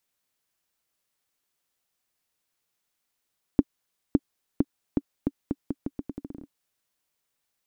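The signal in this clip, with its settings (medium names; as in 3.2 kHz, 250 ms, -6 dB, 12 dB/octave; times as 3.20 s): bouncing ball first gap 0.56 s, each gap 0.81, 281 Hz, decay 42 ms -5.5 dBFS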